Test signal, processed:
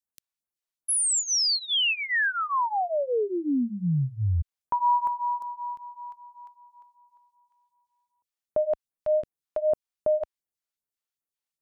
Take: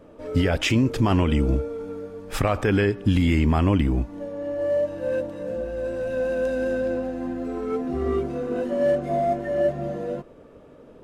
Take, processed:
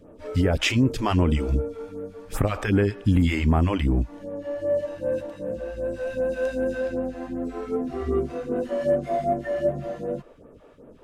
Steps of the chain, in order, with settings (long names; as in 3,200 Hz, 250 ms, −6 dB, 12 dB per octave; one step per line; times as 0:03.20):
all-pass phaser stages 2, 2.6 Hz, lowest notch 100–4,900 Hz